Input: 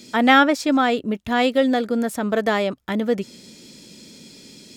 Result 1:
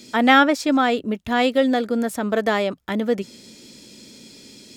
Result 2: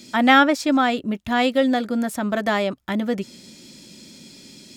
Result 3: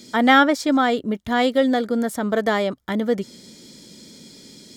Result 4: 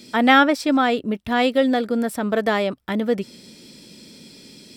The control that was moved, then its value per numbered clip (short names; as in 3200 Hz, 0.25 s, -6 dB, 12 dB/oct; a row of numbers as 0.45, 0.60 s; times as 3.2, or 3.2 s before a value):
notch, frequency: 170, 450, 2600, 6700 Hz